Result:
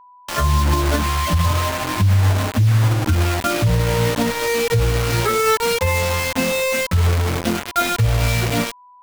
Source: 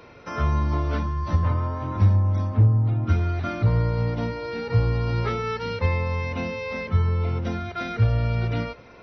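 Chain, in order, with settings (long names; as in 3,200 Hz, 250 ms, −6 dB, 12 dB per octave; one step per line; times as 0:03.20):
spectral dynamics exaggerated over time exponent 2
mains hum 50 Hz, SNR 34 dB
bit reduction 6 bits
steady tone 990 Hz −58 dBFS
boost into a limiter +22.5 dB
level −8.5 dB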